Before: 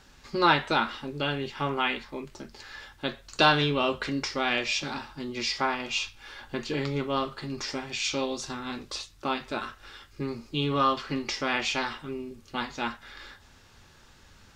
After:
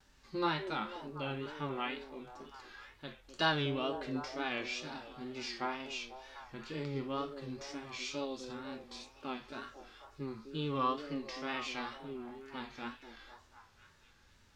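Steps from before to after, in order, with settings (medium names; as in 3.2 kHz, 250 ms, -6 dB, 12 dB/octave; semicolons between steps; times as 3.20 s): harmonic-percussive split percussive -9 dB; repeats whose band climbs or falls 247 ms, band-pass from 380 Hz, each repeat 0.7 oct, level -6.5 dB; vibrato 2.1 Hz 94 cents; trim -8 dB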